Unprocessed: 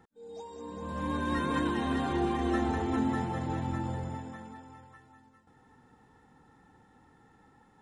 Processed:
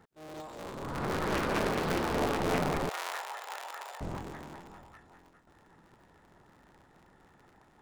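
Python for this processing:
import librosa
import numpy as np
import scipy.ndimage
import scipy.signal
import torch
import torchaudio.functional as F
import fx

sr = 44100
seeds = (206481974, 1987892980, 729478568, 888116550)

y = fx.cycle_switch(x, sr, every=3, mode='inverted')
y = fx.bessel_highpass(y, sr, hz=950.0, order=8, at=(2.89, 4.01))
y = fx.doppler_dist(y, sr, depth_ms=0.98)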